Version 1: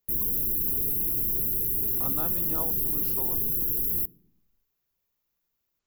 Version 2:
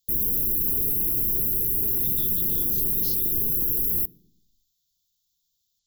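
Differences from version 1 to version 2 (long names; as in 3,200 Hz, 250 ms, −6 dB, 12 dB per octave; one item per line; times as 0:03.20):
speech: add drawn EQ curve 180 Hz 0 dB, 320 Hz −27 dB, 2,100 Hz −26 dB, 3,400 Hz +13 dB
background +3.0 dB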